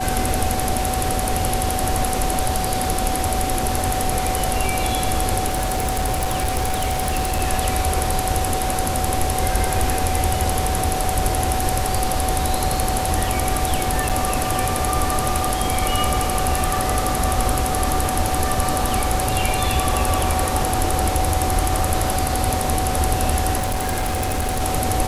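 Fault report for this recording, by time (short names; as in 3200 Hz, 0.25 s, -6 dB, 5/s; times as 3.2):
tone 750 Hz -24 dBFS
5.47–7.43 clipped -16.5 dBFS
14.09–14.1 gap 7.1 ms
23.57–24.62 clipped -18.5 dBFS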